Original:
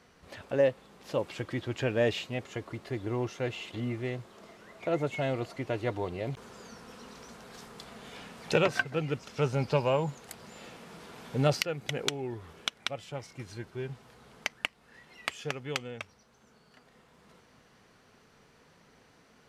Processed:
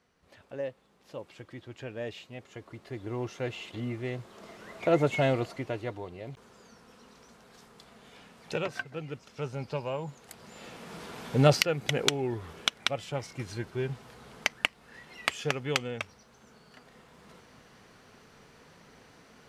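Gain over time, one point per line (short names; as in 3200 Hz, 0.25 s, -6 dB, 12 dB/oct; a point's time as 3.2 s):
2.15 s -10.5 dB
3.37 s -1 dB
4.01 s -1 dB
4.69 s +5.5 dB
5.26 s +5.5 dB
6.06 s -7 dB
9.98 s -7 dB
10.97 s +5 dB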